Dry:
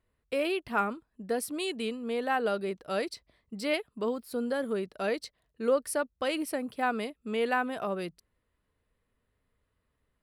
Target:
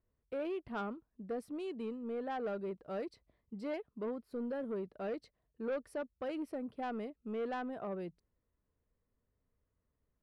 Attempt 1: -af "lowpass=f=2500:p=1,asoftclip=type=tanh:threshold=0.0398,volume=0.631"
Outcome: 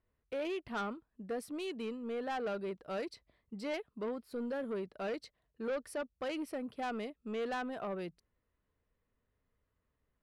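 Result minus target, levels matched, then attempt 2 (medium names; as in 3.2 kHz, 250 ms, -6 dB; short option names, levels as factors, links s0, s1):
2 kHz band +4.0 dB
-af "lowpass=f=690:p=1,asoftclip=type=tanh:threshold=0.0398,volume=0.631"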